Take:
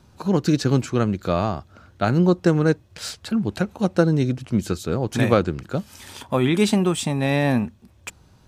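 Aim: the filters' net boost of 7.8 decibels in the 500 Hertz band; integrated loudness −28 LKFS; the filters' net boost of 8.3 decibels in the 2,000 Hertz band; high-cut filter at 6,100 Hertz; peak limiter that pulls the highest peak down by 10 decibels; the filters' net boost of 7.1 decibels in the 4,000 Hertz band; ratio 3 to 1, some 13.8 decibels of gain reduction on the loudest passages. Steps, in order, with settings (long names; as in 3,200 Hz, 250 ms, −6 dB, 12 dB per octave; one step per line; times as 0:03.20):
low-pass filter 6,100 Hz
parametric band 500 Hz +9 dB
parametric band 2,000 Hz +8.5 dB
parametric band 4,000 Hz +6.5 dB
downward compressor 3 to 1, threshold −24 dBFS
level +1.5 dB
brickwall limiter −15.5 dBFS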